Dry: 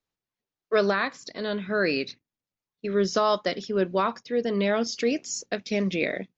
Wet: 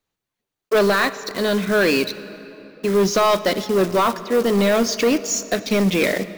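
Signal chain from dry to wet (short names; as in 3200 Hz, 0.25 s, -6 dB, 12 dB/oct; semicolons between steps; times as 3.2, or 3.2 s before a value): block floating point 5-bit; notch 5200 Hz, Q 11; in parallel at -5 dB: requantised 6-bit, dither none; on the sum: soft clip -18.5 dBFS, distortion -11 dB; reverb RT60 3.6 s, pre-delay 55 ms, DRR 14.5 dB; gain +7 dB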